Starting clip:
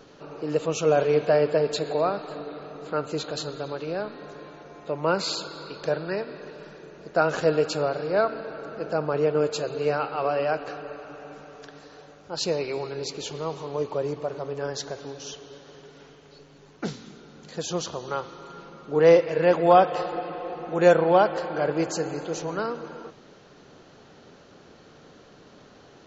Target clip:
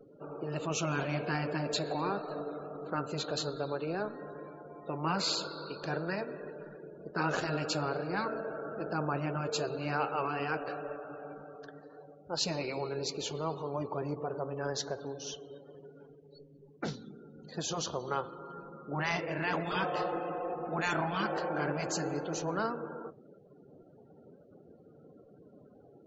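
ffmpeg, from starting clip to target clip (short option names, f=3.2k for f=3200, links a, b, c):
-af "afftdn=nr=33:nf=-46,afftfilt=real='re*lt(hypot(re,im),0.316)':imag='im*lt(hypot(re,im),0.316)':win_size=1024:overlap=0.75,volume=-2.5dB"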